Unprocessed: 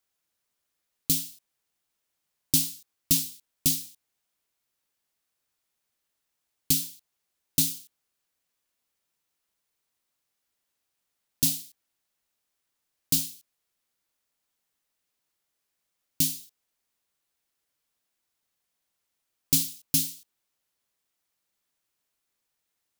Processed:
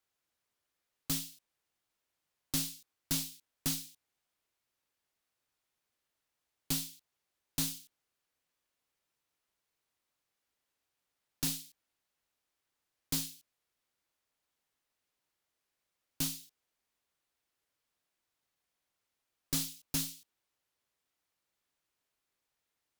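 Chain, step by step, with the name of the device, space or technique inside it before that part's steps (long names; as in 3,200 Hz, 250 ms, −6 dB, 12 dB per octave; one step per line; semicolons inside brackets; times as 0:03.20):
parametric band 200 Hz −3.5 dB 0.36 octaves
tube preamp driven hard (tube saturation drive 22 dB, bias 0.3; high-shelf EQ 5,000 Hz −7 dB)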